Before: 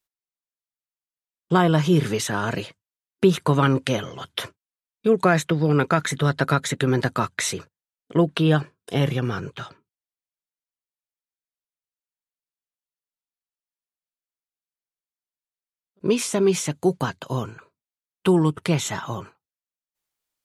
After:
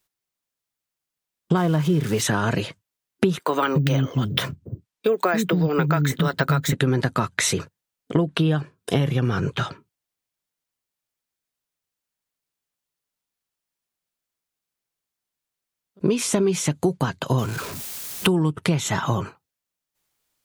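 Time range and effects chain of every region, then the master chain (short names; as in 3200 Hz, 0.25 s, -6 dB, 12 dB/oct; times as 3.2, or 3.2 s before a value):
1.57–2.22 switching spikes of -19.5 dBFS + LPF 2900 Hz 6 dB/oct
3.39–6.73 bands offset in time highs, lows 0.28 s, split 300 Hz + careless resampling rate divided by 2×, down filtered, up hold
17.38–18.27 zero-crossing step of -39.5 dBFS + high shelf 3500 Hz +8.5 dB
whole clip: bell 130 Hz +4 dB 2.1 oct; compressor 6:1, threshold -27 dBFS; gain +9 dB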